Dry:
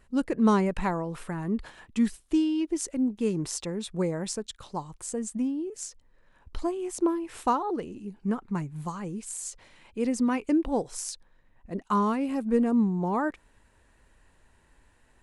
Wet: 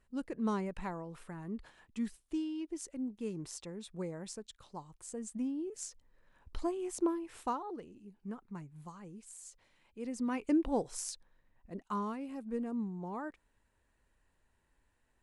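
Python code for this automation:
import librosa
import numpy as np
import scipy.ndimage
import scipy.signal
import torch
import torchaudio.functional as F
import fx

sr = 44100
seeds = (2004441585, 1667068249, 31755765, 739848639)

y = fx.gain(x, sr, db=fx.line((4.96, -12.0), (5.68, -5.5), (6.96, -5.5), (7.93, -14.5), (9.99, -14.5), (10.51, -5.0), (11.01, -5.0), (12.26, -13.5)))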